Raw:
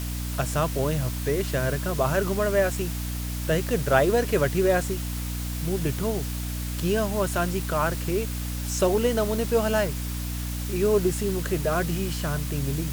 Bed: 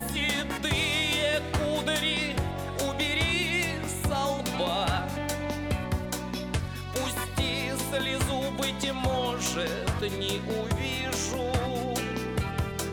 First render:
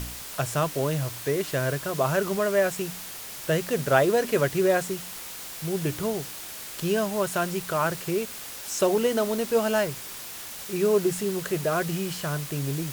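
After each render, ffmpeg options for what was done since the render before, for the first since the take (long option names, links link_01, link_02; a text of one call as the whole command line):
ffmpeg -i in.wav -af "bandreject=frequency=60:width_type=h:width=4,bandreject=frequency=120:width_type=h:width=4,bandreject=frequency=180:width_type=h:width=4,bandreject=frequency=240:width_type=h:width=4,bandreject=frequency=300:width_type=h:width=4" out.wav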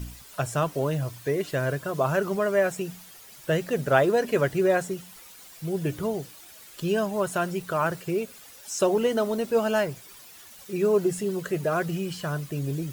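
ffmpeg -i in.wav -af "afftdn=noise_reduction=12:noise_floor=-39" out.wav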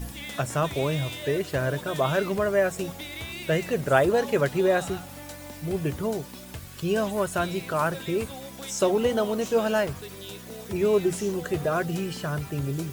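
ffmpeg -i in.wav -i bed.wav -filter_complex "[1:a]volume=-10.5dB[link_01];[0:a][link_01]amix=inputs=2:normalize=0" out.wav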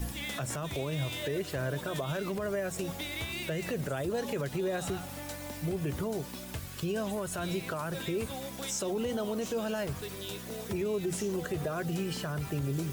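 ffmpeg -i in.wav -filter_complex "[0:a]acrossover=split=310|3000[link_01][link_02][link_03];[link_02]acompressor=threshold=-26dB:ratio=6[link_04];[link_01][link_04][link_03]amix=inputs=3:normalize=0,alimiter=level_in=0.5dB:limit=-24dB:level=0:latency=1:release=117,volume=-0.5dB" out.wav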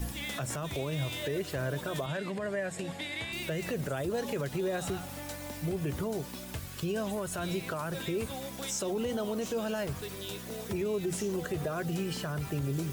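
ffmpeg -i in.wav -filter_complex "[0:a]asettb=1/sr,asplit=3[link_01][link_02][link_03];[link_01]atrim=end=2.064[link_04];[link_02]atrim=start=2.06:end=3.33,asetpts=PTS-STARTPTS,afade=type=in:duration=0.004:curve=qsin,afade=type=out:start_time=1.266:duration=0.004:curve=qsin,highpass=120,equalizer=frequency=380:width_type=q:width=4:gain=-4,equalizer=frequency=1300:width_type=q:width=4:gain=-5,equalizer=frequency=1800:width_type=q:width=4:gain=6,equalizer=frequency=5900:width_type=q:width=4:gain=-9,equalizer=frequency=9800:width_type=q:width=4:gain=-5,lowpass=frequency=9900:width=0.5412,lowpass=frequency=9900:width=1.3066[link_05];[link_03]atrim=start=3.326[link_06];[link_04][link_05]acrossfade=duration=0.004:curve1=hsin:curve2=qsin[link_07];[link_07][link_06]acrossfade=duration=0.004:curve1=qsin:curve2=hsin,asettb=1/sr,asplit=3[link_08][link_09][link_10];[link_08]atrim=end=4.114[link_11];[link_09]atrim=start=4.11:end=5.59,asetpts=PTS-STARTPTS,afade=type=in:duration=0.004:curve=qsin,afade=type=out:start_time=1.476:duration=0.004:curve=qsin,acrusher=bits=7:mode=log:mix=0:aa=0.000001[link_12];[link_10]atrim=start=5.586[link_13];[link_11][link_12]acrossfade=duration=0.004:curve1=hsin:curve2=qsin[link_14];[link_14][link_13]acrossfade=duration=0.004:curve1=qsin:curve2=hsin" out.wav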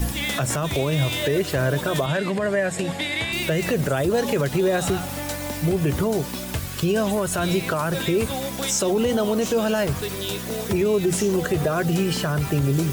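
ffmpeg -i in.wav -af "volume=11.5dB" out.wav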